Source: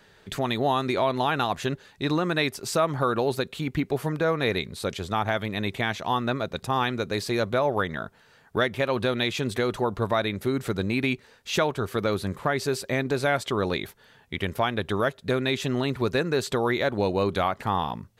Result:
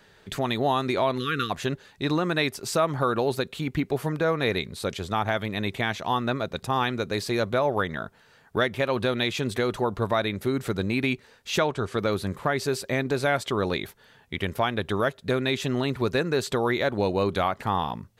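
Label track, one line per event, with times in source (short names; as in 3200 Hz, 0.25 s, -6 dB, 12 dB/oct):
1.180000	1.500000	spectral delete 500–1100 Hz
11.600000	12.000000	LPF 9500 Hz 24 dB/oct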